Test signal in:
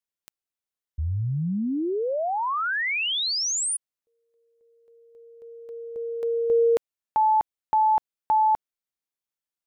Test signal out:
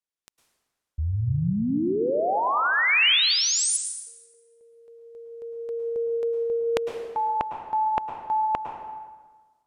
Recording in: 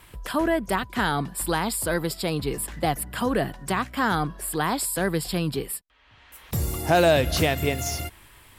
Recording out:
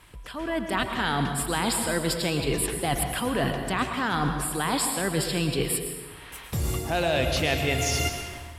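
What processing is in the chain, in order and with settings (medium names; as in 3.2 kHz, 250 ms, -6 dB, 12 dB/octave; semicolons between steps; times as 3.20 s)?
low-pass 11 kHz 12 dB/octave; reverse; compression 12:1, threshold -31 dBFS; reverse; dynamic bell 2.8 kHz, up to +6 dB, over -54 dBFS, Q 1.3; level rider gain up to 10 dB; plate-style reverb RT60 1.4 s, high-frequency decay 0.7×, pre-delay 95 ms, DRR 5 dB; trim -2.5 dB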